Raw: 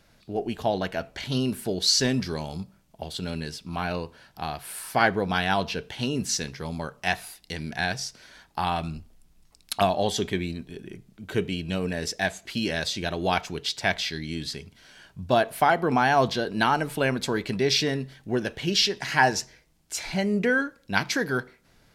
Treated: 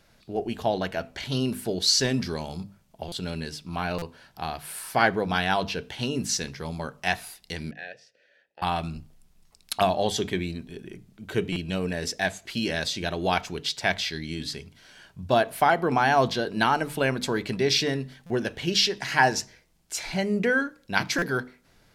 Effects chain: 7.71–8.62 vowel filter e; notches 50/100/150/200/250/300 Hz; stuck buffer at 3.08/3.98/11.52/18.26/21.18, samples 256, times 6

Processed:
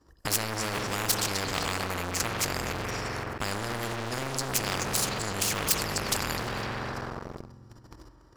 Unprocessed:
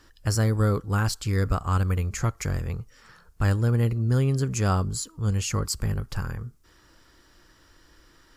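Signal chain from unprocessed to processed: in parallel at -1.5 dB: compressor 6:1, threshold -30 dBFS, peak gain reduction 11.5 dB; on the sum: expander -40 dBFS; high shelf 3600 Hz -11.5 dB; level quantiser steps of 16 dB; HPF 50 Hz 12 dB/oct; band shelf 2300 Hz -11 dB; darkening echo 0.254 s, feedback 36%, low-pass 4700 Hz, level -14 dB; on a send at -6 dB: reverb RT60 2.2 s, pre-delay 45 ms; on the sum: sample leveller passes 3; maximiser +26 dB; spectral compressor 4:1; gain -8 dB

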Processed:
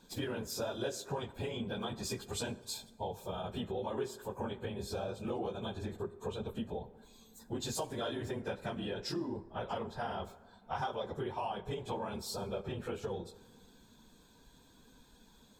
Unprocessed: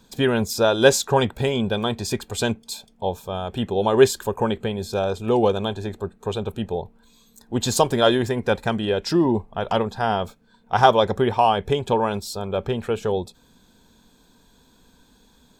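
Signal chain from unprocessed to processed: phase scrambler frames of 50 ms; compressor 5:1, threshold -31 dBFS, peak gain reduction 21.5 dB; plate-style reverb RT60 1.6 s, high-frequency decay 0.45×, DRR 14.5 dB; gain -5.5 dB

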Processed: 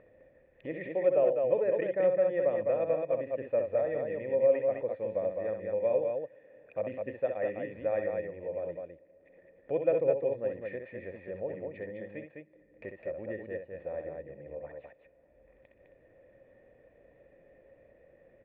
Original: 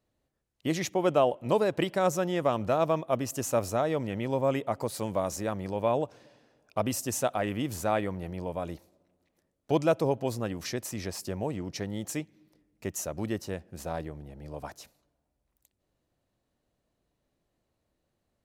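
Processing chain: vocal tract filter e; upward compressor, threshold -46 dBFS; loudspeakers at several distances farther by 22 m -7 dB, 71 m -4 dB; gain +4.5 dB

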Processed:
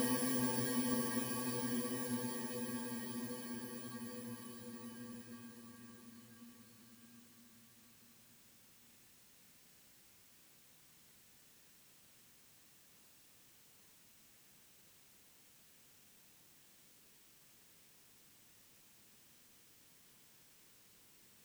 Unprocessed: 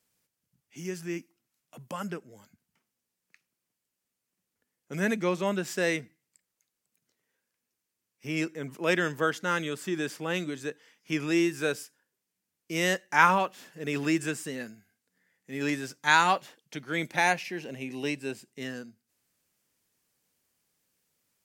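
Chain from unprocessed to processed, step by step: FFT order left unsorted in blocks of 32 samples; Paulstretch 25×, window 1.00 s, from 19; gain +11.5 dB

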